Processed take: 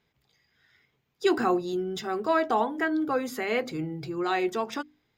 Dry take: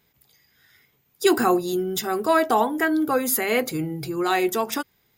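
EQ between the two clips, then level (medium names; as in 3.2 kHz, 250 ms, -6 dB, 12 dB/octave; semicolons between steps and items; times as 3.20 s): distance through air 180 m; treble shelf 6.6 kHz +11 dB; hum notches 50/100/150/200/250/300 Hz; -4.5 dB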